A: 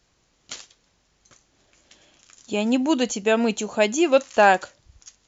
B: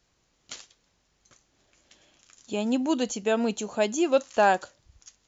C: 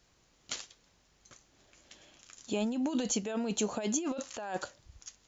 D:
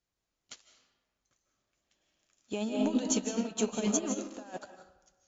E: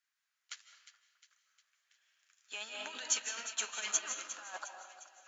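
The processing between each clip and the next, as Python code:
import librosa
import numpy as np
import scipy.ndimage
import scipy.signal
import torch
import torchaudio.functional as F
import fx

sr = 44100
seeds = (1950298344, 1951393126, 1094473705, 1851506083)

y1 = fx.dynamic_eq(x, sr, hz=2200.0, q=1.9, threshold_db=-38.0, ratio=4.0, max_db=-6)
y1 = y1 * 10.0 ** (-4.5 / 20.0)
y2 = fx.over_compress(y1, sr, threshold_db=-30.0, ratio=-1.0)
y2 = y2 * 10.0 ** (-3.0 / 20.0)
y3 = fx.rev_freeverb(y2, sr, rt60_s=1.3, hf_ratio=0.6, predelay_ms=115, drr_db=1.5)
y3 = fx.upward_expand(y3, sr, threshold_db=-42.0, expansion=2.5)
y3 = y3 * 10.0 ** (3.5 / 20.0)
y4 = fx.filter_sweep_highpass(y3, sr, from_hz=1600.0, to_hz=710.0, start_s=4.18, end_s=5.12, q=2.5)
y4 = fx.echo_split(y4, sr, split_hz=1600.0, low_ms=212, high_ms=356, feedback_pct=52, wet_db=-12.5)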